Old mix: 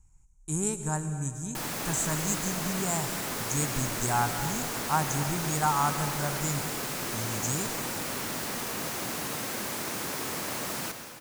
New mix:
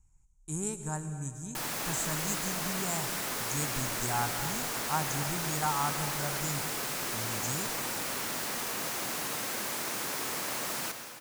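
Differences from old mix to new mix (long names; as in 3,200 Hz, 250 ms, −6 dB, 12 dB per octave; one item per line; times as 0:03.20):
speech −5.0 dB
background: add low-shelf EQ 370 Hz −7.5 dB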